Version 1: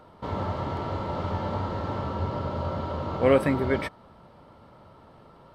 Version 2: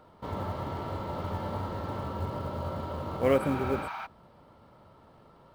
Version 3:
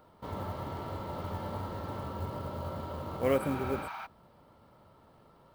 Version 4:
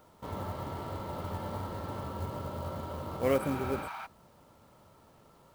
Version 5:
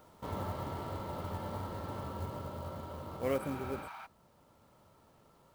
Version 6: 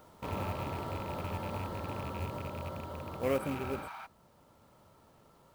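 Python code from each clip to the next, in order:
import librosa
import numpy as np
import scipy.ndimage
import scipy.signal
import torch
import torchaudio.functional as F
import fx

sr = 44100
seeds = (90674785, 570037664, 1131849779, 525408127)

y1 = fx.spec_repair(x, sr, seeds[0], start_s=3.43, length_s=0.61, low_hz=640.0, high_hz=6500.0, source='before')
y1 = fx.quant_float(y1, sr, bits=4)
y1 = y1 * librosa.db_to_amplitude(-4.5)
y2 = fx.high_shelf(y1, sr, hz=10000.0, db=10.0)
y2 = y2 * librosa.db_to_amplitude(-3.5)
y3 = fx.quant_companded(y2, sr, bits=6)
y4 = fx.rider(y3, sr, range_db=10, speed_s=2.0)
y4 = y4 * librosa.db_to_amplitude(-5.0)
y5 = fx.rattle_buzz(y4, sr, strikes_db=-41.0, level_db=-38.0)
y5 = y5 * librosa.db_to_amplitude(2.0)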